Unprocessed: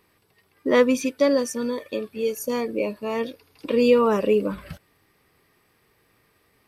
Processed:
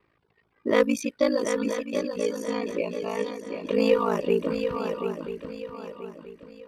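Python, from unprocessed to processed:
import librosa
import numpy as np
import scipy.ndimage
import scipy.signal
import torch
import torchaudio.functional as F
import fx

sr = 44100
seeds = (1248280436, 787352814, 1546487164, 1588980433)

p1 = fx.dereverb_blind(x, sr, rt60_s=0.62)
p2 = fx.env_lowpass(p1, sr, base_hz=2600.0, full_db=-17.5)
p3 = fx.cheby_harmonics(p2, sr, harmonics=(6, 8), levels_db=(-29, -32), full_scale_db=-7.0)
p4 = p3 * np.sin(2.0 * np.pi * 27.0 * np.arange(len(p3)) / sr)
y = p4 + fx.echo_swing(p4, sr, ms=982, ratio=3, feedback_pct=35, wet_db=-7, dry=0)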